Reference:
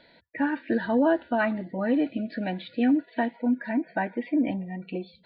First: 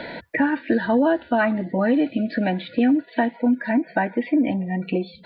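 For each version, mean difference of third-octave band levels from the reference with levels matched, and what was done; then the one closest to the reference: 2.0 dB: three-band squash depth 70%; gain +5 dB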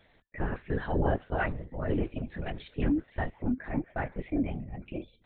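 6.0 dB: LPC vocoder at 8 kHz whisper; gain -5 dB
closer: first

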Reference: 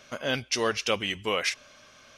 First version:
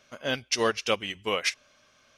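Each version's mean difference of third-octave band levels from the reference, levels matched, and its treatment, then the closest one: 4.5 dB: in parallel at -2 dB: limiter -19.5 dBFS, peak gain reduction 9.5 dB; on the sum: upward expander 2.5:1, over -29 dBFS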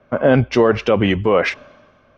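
9.0 dB: Bessel low-pass 830 Hz, order 2; maximiser +26 dB; three-band expander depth 70%; gain -3.5 dB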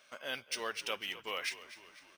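6.5 dB: HPF 930 Hz 6 dB/oct; frequency-shifting echo 0.25 s, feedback 51%, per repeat -53 Hz, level -15 dB; decimation joined by straight lines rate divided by 3×; gain -7.5 dB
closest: first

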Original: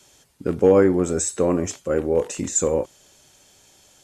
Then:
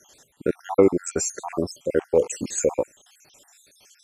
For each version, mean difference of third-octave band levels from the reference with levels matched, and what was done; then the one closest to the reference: 8.0 dB: random spectral dropouts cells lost 64%; low shelf 210 Hz -10 dB; gain +4 dB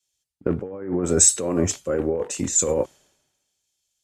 4.5 dB: negative-ratio compressor -22 dBFS, ratio -1; three-band expander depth 100%; gain -1 dB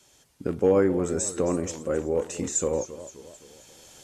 2.5 dB: recorder AGC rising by 8.2 dB/s; warbling echo 0.263 s, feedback 49%, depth 180 cents, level -14.5 dB; gain -5.5 dB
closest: third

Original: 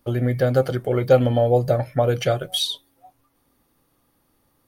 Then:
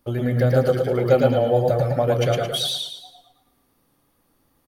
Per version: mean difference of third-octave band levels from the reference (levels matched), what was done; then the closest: 5.0 dB: on a send: feedback echo 0.107 s, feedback 37%, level -8.5 dB; on the sum: warbling echo 0.113 s, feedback 34%, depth 58 cents, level -3 dB; gain -2 dB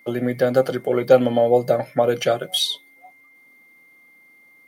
2.0 dB: HPF 170 Hz 24 dB/oct; whine 2100 Hz -52 dBFS; gain +2 dB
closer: second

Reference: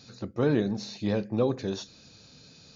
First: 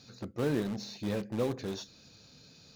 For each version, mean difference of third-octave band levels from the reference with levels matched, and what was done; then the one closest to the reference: 4.5 dB: in parallel at -10 dB: wrapped overs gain 26.5 dB; on the sum: gain -6 dB; IMA ADPCM 176 kbps 44100 Hz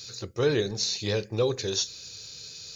6.0 dB: EQ curve 110 Hz 0 dB, 240 Hz -14 dB, 420 Hz +2 dB, 660 Hz -7 dB, 7300 Hz +15 dB; in parallel at -10 dB: backlash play -46 dBFS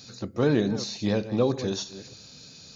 2.5 dB: reverse delay 0.305 s, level -13.5 dB; high shelf 5500 Hz +11.5 dB; gain +2 dB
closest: third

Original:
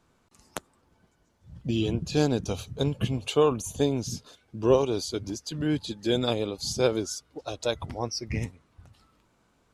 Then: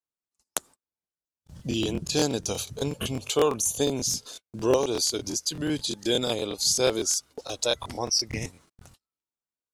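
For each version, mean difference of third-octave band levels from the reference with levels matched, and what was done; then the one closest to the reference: 5.5 dB: gate -53 dBFS, range -40 dB; tone controls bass -6 dB, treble +12 dB; in parallel at +1 dB: compressor, threshold -37 dBFS, peak gain reduction 19.5 dB; on the sum: crackling interface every 0.12 s, samples 1024, repeat, from 0.97; gain -1.5 dB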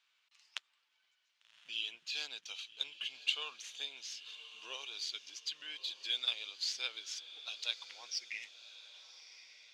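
14.5 dB: median filter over 5 samples; in parallel at -0.5 dB: compressor, threshold -34 dBFS, peak gain reduction 17.5 dB; on the sum: ladder band-pass 3500 Hz, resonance 35%; diffused feedback echo 1.148 s, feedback 41%, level -14 dB; gain +6.5 dB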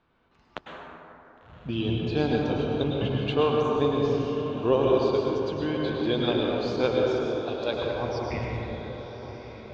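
10.5 dB: LPF 3600 Hz 24 dB/oct; low shelf 400 Hz -5 dB; diffused feedback echo 1.097 s, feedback 45%, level -12 dB; plate-style reverb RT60 3.2 s, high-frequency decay 0.35×, pre-delay 90 ms, DRR -2 dB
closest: first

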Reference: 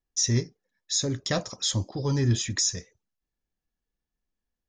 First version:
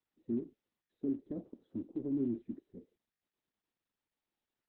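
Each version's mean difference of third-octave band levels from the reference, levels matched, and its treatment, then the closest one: 12.0 dB: limiter -17 dBFS, peak gain reduction 4 dB; Butterworth band-pass 290 Hz, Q 2; gain -1 dB; Opus 6 kbps 48000 Hz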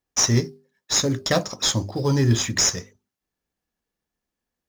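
6.5 dB: HPF 130 Hz 6 dB/oct; notches 50/100/150/200/250/300/350/400 Hz; in parallel at -10.5 dB: sample-rate reducer 4900 Hz, jitter 20%; on the sum: gain +5.5 dB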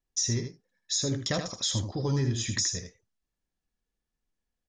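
4.0 dB: compressor, threshold -25 dBFS, peak gain reduction 7.5 dB; on a send: echo 79 ms -7 dB; on the sum: downsampling 22050 Hz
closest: third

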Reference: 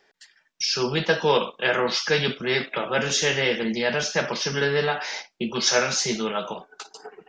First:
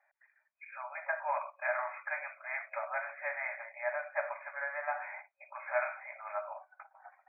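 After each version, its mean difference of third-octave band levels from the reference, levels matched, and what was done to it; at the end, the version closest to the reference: 16.5 dB: FFT band-pass 550–2500 Hz; tilt shelf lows +3 dB; gain -8.5 dB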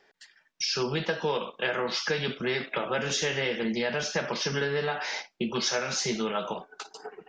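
2.0 dB: high shelf 5000 Hz -5.5 dB; compressor, threshold -25 dBFS, peak gain reduction 10 dB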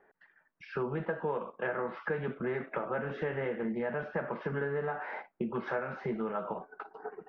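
7.5 dB: LPF 1600 Hz 24 dB/oct; compressor 6:1, threshold -31 dBFS, peak gain reduction 14.5 dB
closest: second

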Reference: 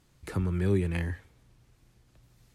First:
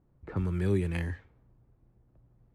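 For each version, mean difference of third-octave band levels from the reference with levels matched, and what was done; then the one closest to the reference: 1.5 dB: low-pass opened by the level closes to 750 Hz, open at -25.5 dBFS; gain -1.5 dB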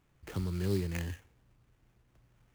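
3.5 dB: sample-rate reducer 4600 Hz, jitter 20%; gain -5.5 dB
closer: first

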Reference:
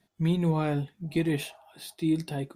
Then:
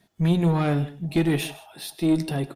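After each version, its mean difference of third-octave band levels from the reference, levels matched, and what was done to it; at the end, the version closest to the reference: 3.0 dB: one diode to ground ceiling -23 dBFS; on a send: tapped delay 98/158 ms -20/-18.5 dB; on the sum: gain +7 dB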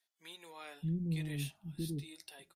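8.5 dB: bell 660 Hz -13.5 dB 2.8 oct; bands offset in time highs, lows 0.63 s, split 490 Hz; gain -5 dB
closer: first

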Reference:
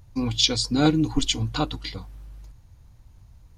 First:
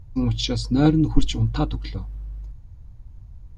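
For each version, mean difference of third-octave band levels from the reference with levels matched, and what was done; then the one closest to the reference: 4.0 dB: tilt -2.5 dB/oct; gain -2 dB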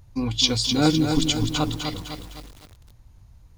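7.5 dB: lo-fi delay 0.254 s, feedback 55%, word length 7-bit, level -5.5 dB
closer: first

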